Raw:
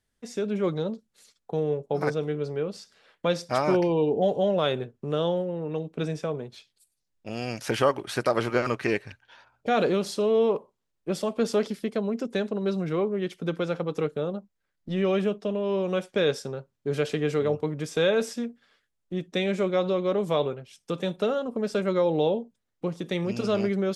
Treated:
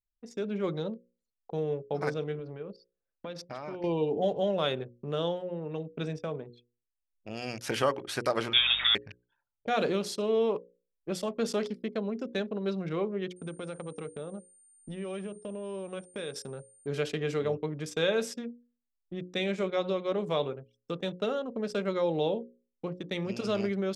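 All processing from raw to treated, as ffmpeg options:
-filter_complex "[0:a]asettb=1/sr,asplit=3[s0][s1][s2];[s0]atrim=end=2.394[s3];[s1]atrim=start=2.39:end=3.84,asetpts=PTS-STARTPTS,afade=t=in:d=0.004:c=qsin,afade=t=out:st=1.446:d=0.004:c=qsin,equalizer=f=8400:t=o:w=0.78:g=-8,acompressor=threshold=0.0282:ratio=5:attack=3.2:release=140:knee=1:detection=peak[s4];[s2]atrim=start=3.836[s5];[s3][s4]acrossfade=d=0.004:c1=hsin:c2=qsin[s6];[s6][s5]acrossfade=d=0.004:c1=qsin:c2=hsin,asettb=1/sr,asplit=3[s7][s8][s9];[s7]atrim=end=8.534[s10];[s8]atrim=start=8.53:end=8.95,asetpts=PTS-STARTPTS,afade=t=in:d=0.004:c=qsin,afade=t=out:st=0.416:d=0.004:c=qsin,aeval=exprs='val(0)+0.5*0.0501*sgn(val(0))':c=same,lowpass=f=3200:t=q:w=0.5098,lowpass=f=3200:t=q:w=0.6013,lowpass=f=3200:t=q:w=0.9,lowpass=f=3200:t=q:w=2.563,afreqshift=-3800,aeval=exprs='val(0)+0.00447*(sin(2*PI*50*n/s)+sin(2*PI*2*50*n/s)/2+sin(2*PI*3*50*n/s)/3+sin(2*PI*4*50*n/s)/4+sin(2*PI*5*50*n/s)/5)':c=same[s11];[s9]atrim=start=8.946[s12];[s10][s11]acrossfade=d=0.004:c1=hsin:c2=qsin[s13];[s13][s12]acrossfade=d=0.004:c1=qsin:c2=hsin,asettb=1/sr,asplit=3[s14][s15][s16];[s14]atrim=end=13.364[s17];[s15]atrim=start=13.36:end=16.87,asetpts=PTS-STARTPTS,afade=t=in:d=0.004:c=qsin,afade=t=out:st=3.506:d=0.004:c=qsin,acompressor=threshold=0.0316:ratio=4:attack=3.2:release=140:knee=1:detection=peak,aeval=exprs='val(0)+0.00398*sin(2*PI*9000*n/s)':c=same[s18];[s16]atrim=start=16.866[s19];[s17][s18]acrossfade=d=0.004:c1=hsin:c2=qsin[s20];[s20][s19]acrossfade=d=0.004:c1=qsin:c2=hsin,anlmdn=0.251,bandreject=f=60:t=h:w=6,bandreject=f=120:t=h:w=6,bandreject=f=180:t=h:w=6,bandreject=f=240:t=h:w=6,bandreject=f=300:t=h:w=6,bandreject=f=360:t=h:w=6,bandreject=f=420:t=h:w=6,bandreject=f=480:t=h:w=6,bandreject=f=540:t=h:w=6,adynamicequalizer=threshold=0.00891:dfrequency=1800:dqfactor=0.7:tfrequency=1800:tqfactor=0.7:attack=5:release=100:ratio=0.375:range=1.5:mode=boostabove:tftype=highshelf,volume=0.596"

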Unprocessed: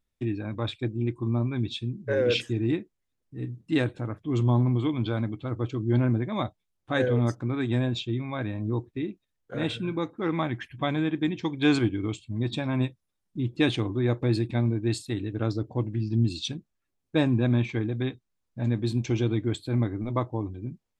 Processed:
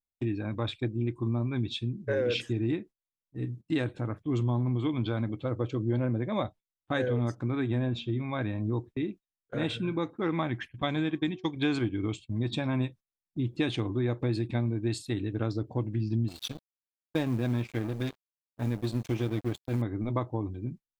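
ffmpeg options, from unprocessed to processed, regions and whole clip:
-filter_complex "[0:a]asettb=1/sr,asplit=3[s0][s1][s2];[s0]atrim=end=5.294[s3];[s1]atrim=start=5.29:end=6.45,asetpts=PTS-STARTPTS,afade=t=in:d=0.004:c=qsin,afade=t=out:st=1.156:d=0.004:c=qsin,highpass=54,equalizer=f=530:t=o:w=0.35:g=9[s4];[s2]atrim=start=6.446[s5];[s3][s4]acrossfade=d=0.004:c1=hsin:c2=qsin[s6];[s6][s5]acrossfade=d=0.004:c1=qsin:c2=hsin,asettb=1/sr,asplit=3[s7][s8][s9];[s7]atrim=end=7.604[s10];[s8]atrim=start=7.6:end=8.21,asetpts=PTS-STARTPTS,afade=t=in:d=0.004:c=qsin,afade=t=out:st=0.606:d=0.004:c=qsin,highshelf=f=3500:g=-10.5,bandreject=f=233.5:t=h:w=4,bandreject=f=467:t=h:w=4,bandreject=f=700.5:t=h:w=4,bandreject=f=934:t=h:w=4,bandreject=f=1167.5:t=h:w=4,bandreject=f=1401:t=h:w=4,bandreject=f=1634.5:t=h:w=4,bandreject=f=1868:t=h:w=4,bandreject=f=2101.5:t=h:w=4,bandreject=f=2335:t=h:w=4,bandreject=f=2568.5:t=h:w=4,bandreject=f=2802:t=h:w=4,bandreject=f=3035.5:t=h:w=4,bandreject=f=3269:t=h:w=4,bandreject=f=3502.5:t=h:w=4,bandreject=f=3736:t=h:w=4,bandreject=f=3969.5:t=h:w=4,bandreject=f=4203:t=h:w=4,bandreject=f=4436.5:t=h:w=4,bandreject=f=4670:t=h:w=4,bandreject=f=4903.5:t=h:w=4,bandreject=f=5137:t=h:w=4,bandreject=f=5370.5:t=h:w=4,bandreject=f=5604:t=h:w=4,bandreject=f=5837.5:t=h:w=4[s11];[s9]atrim=start=8.206[s12];[s10][s11]acrossfade=d=0.004:c1=hsin:c2=qsin[s13];[s13][s12]acrossfade=d=0.004:c1=qsin:c2=hsin,asettb=1/sr,asplit=3[s14][s15][s16];[s14]atrim=end=10.824[s17];[s15]atrim=start=10.82:end=11.56,asetpts=PTS-STARTPTS,afade=t=in:d=0.004:c=qsin,afade=t=out:st=0.736:d=0.004:c=qsin,agate=range=0.0224:threshold=0.0398:ratio=3:release=100:detection=peak,equalizer=f=6000:w=0.66:g=6,bandreject=f=369.7:t=h:w=4,bandreject=f=739.4:t=h:w=4,bandreject=f=1109.1:t=h:w=4[s18];[s16]atrim=start=11.556[s19];[s17][s18]acrossfade=d=0.004:c1=hsin:c2=qsin[s20];[s20][s19]acrossfade=d=0.004:c1=qsin:c2=hsin,asettb=1/sr,asplit=3[s21][s22][s23];[s21]atrim=end=16.284[s24];[s22]atrim=start=16.28:end=19.82,asetpts=PTS-STARTPTS,afade=t=in:d=0.004:c=qsin,afade=t=out:st=3.536:d=0.004:c=qsin,bandreject=f=387.5:t=h:w=4,bandreject=f=775:t=h:w=4,bandreject=f=1162.5:t=h:w=4,bandreject=f=1550:t=h:w=4,bandreject=f=1937.5:t=h:w=4,bandreject=f=2325:t=h:w=4,bandreject=f=2712.5:t=h:w=4,bandreject=f=3100:t=h:w=4,bandreject=f=3487.5:t=h:w=4,bandreject=f=3875:t=h:w=4,bandreject=f=4262.5:t=h:w=4,bandreject=f=4650:t=h:w=4,bandreject=f=5037.5:t=h:w=4,bandreject=f=5425:t=h:w=4,bandreject=f=5812.5:t=h:w=4,bandreject=f=6200:t=h:w=4,bandreject=f=6587.5:t=h:w=4,bandreject=f=6975:t=h:w=4,bandreject=f=7362.5:t=h:w=4,bandreject=f=7750:t=h:w=4,bandreject=f=8137.5:t=h:w=4,bandreject=f=8525:t=h:w=4,bandreject=f=8912.5:t=h:w=4,bandreject=f=9300:t=h:w=4,bandreject=f=9687.5:t=h:w=4,bandreject=f=10075:t=h:w=4,bandreject=f=10462.5:t=h:w=4,bandreject=f=10850:t=h:w=4,bandreject=f=11237.5:t=h:w=4,bandreject=f=11625:t=h:w=4,bandreject=f=12012.5:t=h:w=4,bandreject=f=12400:t=h:w=4,bandreject=f=12787.5:t=h:w=4,bandreject=f=13175:t=h:w=4,acrusher=bits=8:mode=log:mix=0:aa=0.000001,aeval=exprs='sgn(val(0))*max(abs(val(0))-0.015,0)':c=same[s25];[s23]atrim=start=19.816[s26];[s24][s25]acrossfade=d=0.004:c1=hsin:c2=qsin[s27];[s27][s26]acrossfade=d=0.004:c1=qsin:c2=hsin,agate=range=0.1:threshold=0.00794:ratio=16:detection=peak,acompressor=threshold=0.0562:ratio=4,adynamicequalizer=threshold=0.00251:dfrequency=5400:dqfactor=0.7:tfrequency=5400:tqfactor=0.7:attack=5:release=100:ratio=0.375:range=2.5:mode=cutabove:tftype=highshelf"

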